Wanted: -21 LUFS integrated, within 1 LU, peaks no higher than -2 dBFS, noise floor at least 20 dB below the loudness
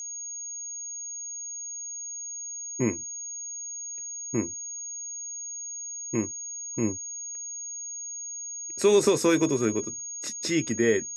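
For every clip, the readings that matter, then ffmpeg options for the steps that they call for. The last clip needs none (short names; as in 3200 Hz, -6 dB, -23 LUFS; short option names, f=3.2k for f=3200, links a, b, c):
steady tone 6600 Hz; tone level -34 dBFS; loudness -29.0 LUFS; peak -10.0 dBFS; loudness target -21.0 LUFS
-> -af "bandreject=f=6.6k:w=30"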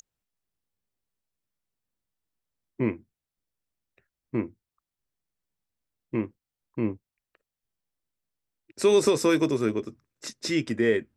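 steady tone none; loudness -26.5 LUFS; peak -10.5 dBFS; loudness target -21.0 LUFS
-> -af "volume=5.5dB"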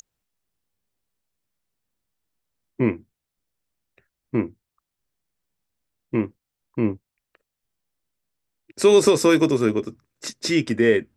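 loudness -21.0 LUFS; peak -5.0 dBFS; noise floor -84 dBFS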